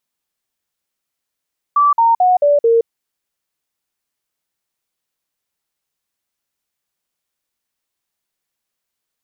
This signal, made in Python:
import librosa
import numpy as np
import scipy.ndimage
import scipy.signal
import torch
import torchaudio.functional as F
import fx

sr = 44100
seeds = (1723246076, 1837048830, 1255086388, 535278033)

y = fx.stepped_sweep(sr, from_hz=1160.0, direction='down', per_octave=3, tones=5, dwell_s=0.17, gap_s=0.05, level_db=-8.5)